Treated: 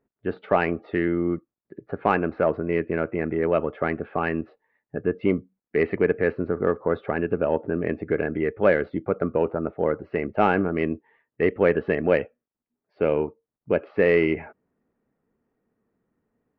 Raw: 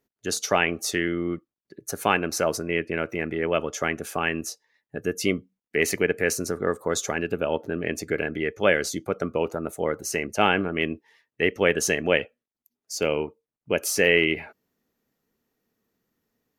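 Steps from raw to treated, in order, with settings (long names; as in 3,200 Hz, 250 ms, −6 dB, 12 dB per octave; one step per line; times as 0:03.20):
Gaussian smoothing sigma 4.6 samples
in parallel at −5 dB: soft clipping −16 dBFS, distortion −14 dB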